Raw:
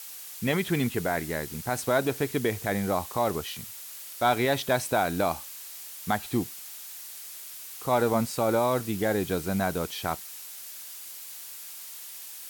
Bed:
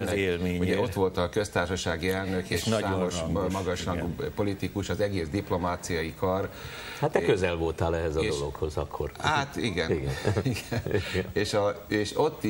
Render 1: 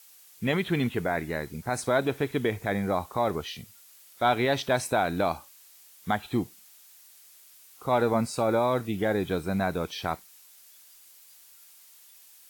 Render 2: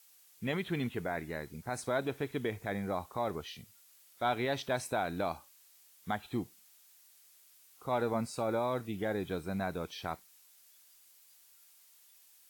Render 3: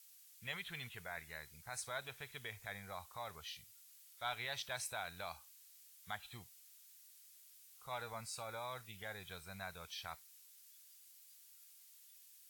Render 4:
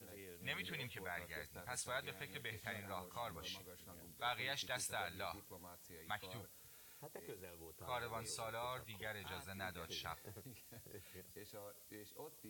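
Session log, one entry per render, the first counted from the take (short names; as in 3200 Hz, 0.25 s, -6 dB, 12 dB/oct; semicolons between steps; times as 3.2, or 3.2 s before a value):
noise print and reduce 12 dB
gain -8 dB
passive tone stack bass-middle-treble 10-0-10
add bed -29.5 dB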